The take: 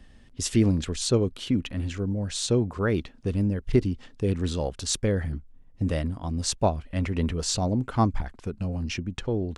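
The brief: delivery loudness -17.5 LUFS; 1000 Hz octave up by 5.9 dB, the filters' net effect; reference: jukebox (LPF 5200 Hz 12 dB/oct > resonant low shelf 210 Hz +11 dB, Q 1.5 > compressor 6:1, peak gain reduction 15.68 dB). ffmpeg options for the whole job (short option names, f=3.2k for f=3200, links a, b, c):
-af "lowpass=5.2k,lowshelf=f=210:t=q:w=1.5:g=11,equalizer=f=1k:t=o:g=8.5,acompressor=threshold=-23dB:ratio=6,volume=11dB"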